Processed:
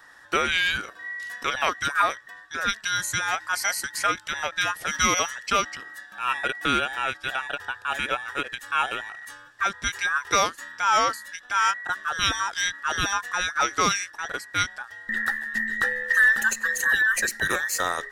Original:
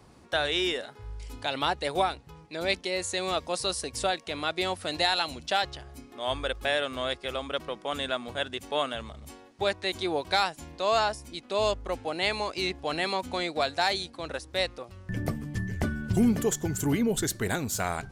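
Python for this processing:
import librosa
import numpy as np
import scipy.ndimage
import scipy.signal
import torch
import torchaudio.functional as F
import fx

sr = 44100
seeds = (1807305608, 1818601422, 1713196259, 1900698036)

y = fx.band_invert(x, sr, width_hz=2000)
y = fx.end_taper(y, sr, db_per_s=300.0)
y = F.gain(torch.from_numpy(y), 4.0).numpy()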